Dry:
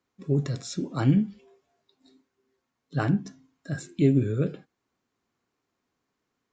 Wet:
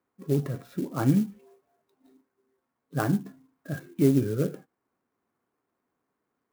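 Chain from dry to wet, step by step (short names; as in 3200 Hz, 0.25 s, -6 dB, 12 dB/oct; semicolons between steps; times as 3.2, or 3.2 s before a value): LPF 1700 Hz 12 dB/oct; low shelf 120 Hz -10.5 dB; clock jitter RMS 0.039 ms; gain +2 dB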